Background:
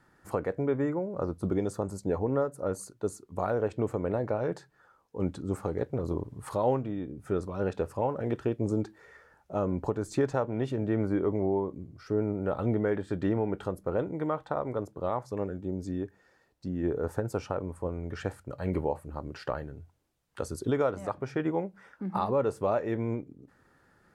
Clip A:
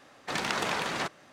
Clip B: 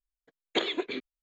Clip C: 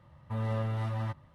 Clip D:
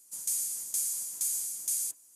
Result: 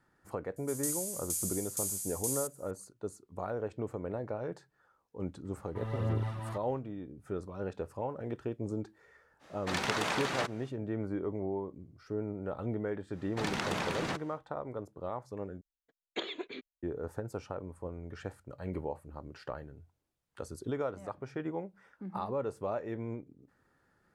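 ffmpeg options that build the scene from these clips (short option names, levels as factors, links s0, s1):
-filter_complex "[1:a]asplit=2[s0][s1];[0:a]volume=0.422[s2];[3:a]aphaser=in_gain=1:out_gain=1:delay=3.2:decay=0.5:speed=1.5:type=sinusoidal[s3];[s1]lowshelf=f=290:g=11.5[s4];[s2]asplit=2[s5][s6];[s5]atrim=end=15.614[s7];[2:a]atrim=end=1.22,asetpts=PTS-STARTPTS,volume=0.355[s8];[s6]atrim=start=16.826[s9];[4:a]atrim=end=2.15,asetpts=PTS-STARTPTS,volume=0.631,afade=t=in:d=0.004:c=hsin,afade=t=out:st=2.146:d=0.004:c=hsin,adelay=560[s10];[s3]atrim=end=1.34,asetpts=PTS-STARTPTS,volume=0.562,afade=t=in:d=0.004:c=hsin,afade=t=out:st=1.336:d=0.004:c=hsin,adelay=240345S[s11];[s0]atrim=end=1.32,asetpts=PTS-STARTPTS,volume=0.75,afade=t=in:d=0.05,afade=t=out:st=1.27:d=0.05,adelay=9390[s12];[s4]atrim=end=1.32,asetpts=PTS-STARTPTS,volume=0.501,afade=t=in:d=0.1,afade=t=out:st=1.22:d=0.1,adelay=13090[s13];[s7][s8]acrossfade=d=0.004:c1=hsin:c2=hsin[s14];[s14][s9]acrossfade=d=0.004:c1=hsin:c2=hsin[s15];[s15][s10][s11][s12][s13]amix=inputs=5:normalize=0"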